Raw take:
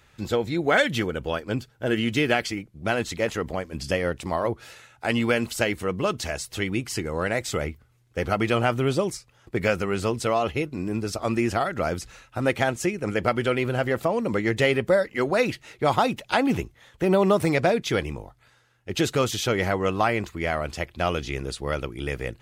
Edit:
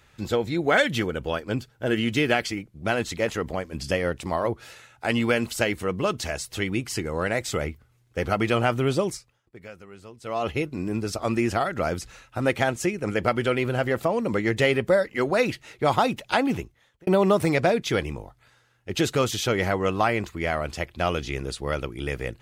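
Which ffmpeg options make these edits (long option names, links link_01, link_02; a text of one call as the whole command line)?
ffmpeg -i in.wav -filter_complex "[0:a]asplit=4[link_01][link_02][link_03][link_04];[link_01]atrim=end=9.42,asetpts=PTS-STARTPTS,afade=type=out:start_time=9.13:duration=0.29:silence=0.105925[link_05];[link_02]atrim=start=9.42:end=10.21,asetpts=PTS-STARTPTS,volume=-19.5dB[link_06];[link_03]atrim=start=10.21:end=17.07,asetpts=PTS-STARTPTS,afade=type=in:duration=0.29:silence=0.105925,afade=type=out:start_time=6.14:duration=0.72[link_07];[link_04]atrim=start=17.07,asetpts=PTS-STARTPTS,afade=type=in:duration=0.004:curve=hsin[link_08];[link_05][link_06][link_07][link_08]concat=n=4:v=0:a=1" out.wav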